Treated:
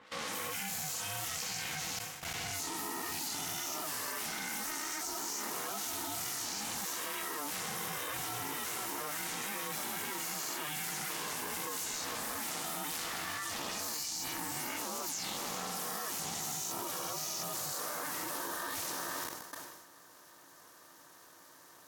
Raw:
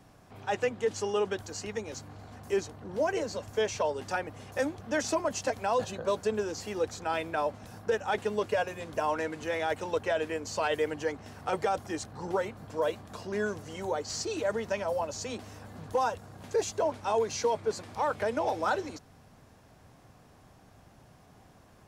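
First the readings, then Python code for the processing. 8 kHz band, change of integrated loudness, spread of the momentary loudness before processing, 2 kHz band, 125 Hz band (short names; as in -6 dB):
+6.5 dB, -4.0 dB, 8 LU, -3.0 dB, -7.0 dB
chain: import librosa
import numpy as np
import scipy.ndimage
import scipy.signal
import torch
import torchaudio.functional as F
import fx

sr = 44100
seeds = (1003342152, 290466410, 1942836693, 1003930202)

p1 = fx.spec_swells(x, sr, rise_s=1.95)
p2 = scipy.signal.sosfilt(scipy.signal.butter(4, 460.0, 'highpass', fs=sr, output='sos'), p1)
p3 = fx.quant_dither(p2, sr, seeds[0], bits=6, dither='none')
p4 = fx.env_lowpass(p3, sr, base_hz=980.0, full_db=-25.5)
p5 = fx.chorus_voices(p4, sr, voices=4, hz=0.76, base_ms=14, depth_ms=1.7, mix_pct=55)
p6 = fx.tilt_eq(p5, sr, slope=4.0)
p7 = p6 + fx.echo_diffused(p6, sr, ms=486, feedback_pct=72, wet_db=-12, dry=0)
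p8 = fx.level_steps(p7, sr, step_db=19)
p9 = fx.high_shelf(p8, sr, hz=9400.0, db=4.0)
p10 = p9 * np.sin(2.0 * np.pi * 300.0 * np.arange(len(p9)) / sr)
p11 = fx.sustainer(p10, sr, db_per_s=45.0)
y = F.gain(torch.from_numpy(p11), 1.5).numpy()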